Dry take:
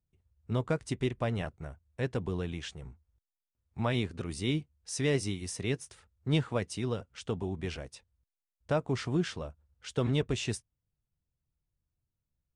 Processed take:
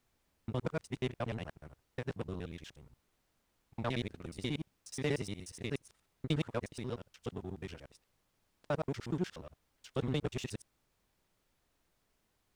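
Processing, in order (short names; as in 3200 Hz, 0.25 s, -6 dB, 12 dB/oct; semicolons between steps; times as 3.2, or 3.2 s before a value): local time reversal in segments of 60 ms; power-law curve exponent 1.4; added noise pink -75 dBFS; gain -2.5 dB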